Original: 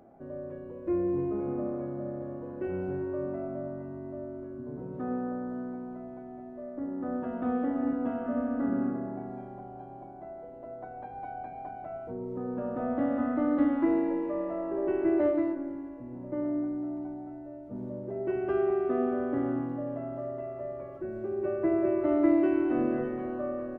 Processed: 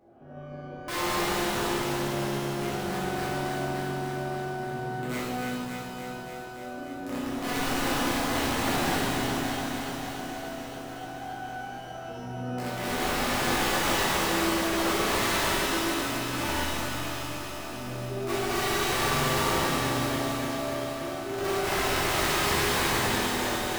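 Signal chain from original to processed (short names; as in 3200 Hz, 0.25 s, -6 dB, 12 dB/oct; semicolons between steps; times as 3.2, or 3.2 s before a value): wrapped overs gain 25.5 dB; on a send: echo with dull and thin repeats by turns 0.144 s, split 1100 Hz, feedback 87%, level -2.5 dB; on the sum: shimmer reverb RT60 1.3 s, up +12 st, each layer -8 dB, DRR -9 dB; gain -8.5 dB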